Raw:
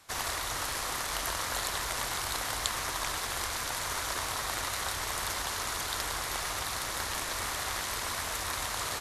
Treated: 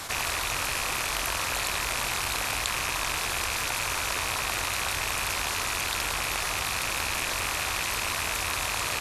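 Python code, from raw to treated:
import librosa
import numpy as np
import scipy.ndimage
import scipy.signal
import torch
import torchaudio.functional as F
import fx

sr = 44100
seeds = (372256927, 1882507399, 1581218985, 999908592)

y = fx.rattle_buzz(x, sr, strikes_db=-48.0, level_db=-22.0)
y = fx.env_flatten(y, sr, amount_pct=70)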